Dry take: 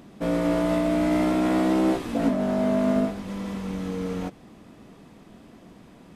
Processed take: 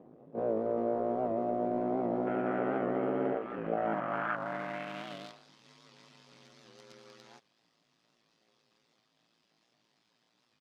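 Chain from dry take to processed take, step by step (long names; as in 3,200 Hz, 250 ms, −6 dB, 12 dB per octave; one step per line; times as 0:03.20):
high-shelf EQ 2,500 Hz −10.5 dB
comb filter 4.2 ms, depth 48%
repeating echo 965 ms, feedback 20%, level −23 dB
in parallel at −9.5 dB: comparator with hysteresis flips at −20 dBFS
on the sum: tempo change 0.58×
gain on a spectral selection 0:02.27–0:04.36, 1,200–3,300 Hz +12 dB
dynamic equaliser 1,200 Hz, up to +4 dB, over −40 dBFS, Q 1.2
band-pass filter sweep 500 Hz → 4,800 Hz, 0:03.60–0:05.41
downward compressor 2.5 to 1, threshold −31 dBFS, peak gain reduction 6 dB
ring modulation 56 Hz
wow of a warped record 78 rpm, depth 100 cents
level +3.5 dB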